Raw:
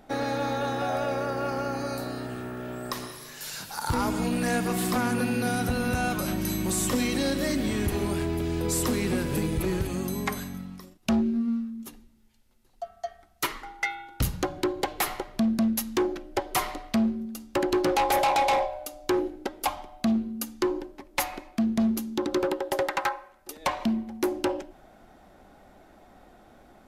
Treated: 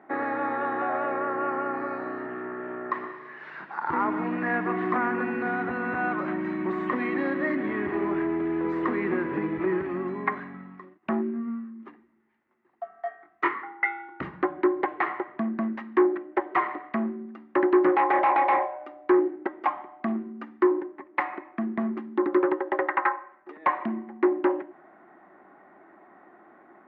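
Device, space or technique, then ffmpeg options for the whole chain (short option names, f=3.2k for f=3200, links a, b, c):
bass cabinet: -filter_complex "[0:a]highpass=220,highpass=65,equalizer=f=110:t=q:w=4:g=-10,equalizer=f=240:t=q:w=4:g=-3,equalizer=f=350:t=q:w=4:g=8,equalizer=f=500:t=q:w=4:g=-6,equalizer=f=1.1k:t=q:w=4:g=8,equalizer=f=1.9k:t=q:w=4:g=9,lowpass=f=2k:w=0.5412,lowpass=f=2k:w=1.3066,asettb=1/sr,asplit=3[a][b][c];[a]atrim=end=12.924[d];[b]atrim=start=12.92:end=13.64,asetpts=PTS-STARTPTS,afade=t=in:d=0.004:c=qsin,afade=t=out:st=0.716:d=0.004:c=qsin,asplit=2[e][f];[f]adelay=23,volume=-3dB[g];[e][g]amix=inputs=2:normalize=0,atrim=end_sample=31752[h];[c]atrim=start=13.636[i];[d][h]acrossfade=d=0.004:c1=hsin:c2=qsin[j];[j][i]acrossfade=d=0.004:c1=qsin:c2=hsin"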